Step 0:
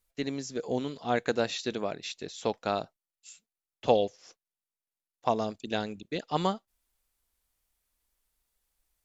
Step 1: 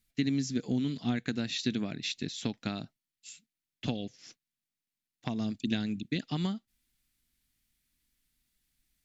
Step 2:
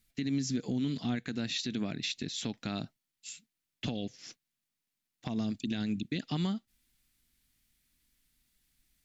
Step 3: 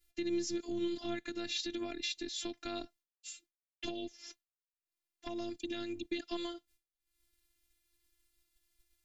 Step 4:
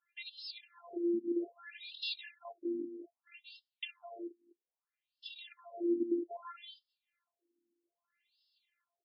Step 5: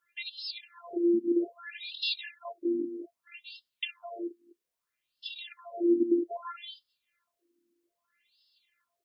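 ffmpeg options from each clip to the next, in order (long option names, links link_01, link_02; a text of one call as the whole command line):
ffmpeg -i in.wav -af "acompressor=threshold=-31dB:ratio=5,equalizer=frequency=125:width_type=o:width=1:gain=9,equalizer=frequency=250:width_type=o:width=1:gain=11,equalizer=frequency=500:width_type=o:width=1:gain=-10,equalizer=frequency=1000:width_type=o:width=1:gain=-8,equalizer=frequency=2000:width_type=o:width=1:gain=5,equalizer=frequency=4000:width_type=o:width=1:gain=4" out.wav
ffmpeg -i in.wav -af "alimiter=level_in=3dB:limit=-24dB:level=0:latency=1:release=121,volume=-3dB,volume=3.5dB" out.wav
ffmpeg -i in.wav -af "acompressor=mode=upward:threshold=-53dB:ratio=2.5,agate=range=-33dB:threshold=-55dB:ratio=3:detection=peak,afftfilt=real='hypot(re,im)*cos(PI*b)':imag='0':win_size=512:overlap=0.75,volume=1dB" out.wav
ffmpeg -i in.wav -af "alimiter=level_in=7dB:limit=-24dB:level=0:latency=1:release=11,volume=-7dB,aecho=1:1:203:0.398,afftfilt=real='re*between(b*sr/1024,290*pow(3900/290,0.5+0.5*sin(2*PI*0.62*pts/sr))/1.41,290*pow(3900/290,0.5+0.5*sin(2*PI*0.62*pts/sr))*1.41)':imag='im*between(b*sr/1024,290*pow(3900/290,0.5+0.5*sin(2*PI*0.62*pts/sr))/1.41,290*pow(3900/290,0.5+0.5*sin(2*PI*0.62*pts/sr))*1.41)':win_size=1024:overlap=0.75,volume=8.5dB" out.wav
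ffmpeg -i in.wav -af "asuperstop=centerf=810:order=4:qfactor=5.7,volume=7.5dB" out.wav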